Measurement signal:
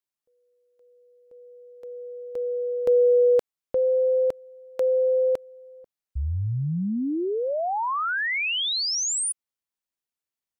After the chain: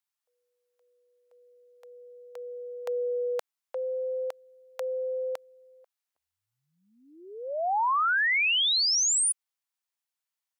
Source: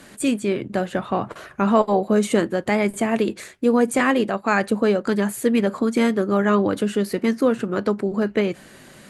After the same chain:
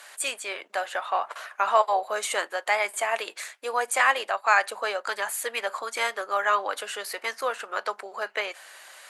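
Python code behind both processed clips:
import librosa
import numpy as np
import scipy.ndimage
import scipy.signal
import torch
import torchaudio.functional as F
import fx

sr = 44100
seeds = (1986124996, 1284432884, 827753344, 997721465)

y = scipy.signal.sosfilt(scipy.signal.butter(4, 710.0, 'highpass', fs=sr, output='sos'), x)
y = y * 10.0 ** (1.5 / 20.0)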